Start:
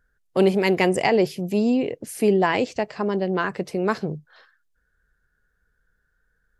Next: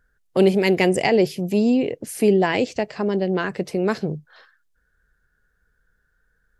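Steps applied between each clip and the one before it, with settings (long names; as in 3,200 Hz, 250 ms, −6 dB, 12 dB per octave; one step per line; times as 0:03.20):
dynamic equaliser 1,100 Hz, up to −7 dB, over −37 dBFS, Q 1.5
level +2.5 dB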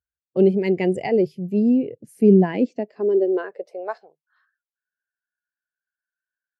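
high-pass filter sweep 76 Hz → 1,600 Hz, 0:01.58–0:04.72
every bin expanded away from the loudest bin 1.5 to 1
level −1 dB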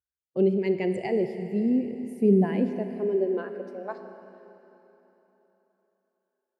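four-comb reverb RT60 3.6 s, combs from 28 ms, DRR 7.5 dB
level −6.5 dB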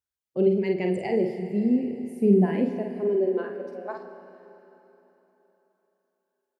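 double-tracking delay 49 ms −5 dB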